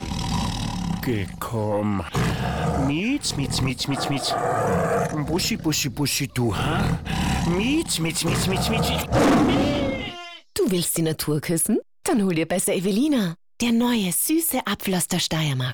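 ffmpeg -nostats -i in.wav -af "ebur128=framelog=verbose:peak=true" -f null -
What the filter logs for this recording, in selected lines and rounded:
Integrated loudness:
  I:         -22.8 LUFS
  Threshold: -32.8 LUFS
Loudness range:
  LRA:         2.9 LU
  Threshold: -42.7 LUFS
  LRA low:   -24.3 LUFS
  LRA high:  -21.5 LUFS
True peak:
  Peak:      -12.8 dBFS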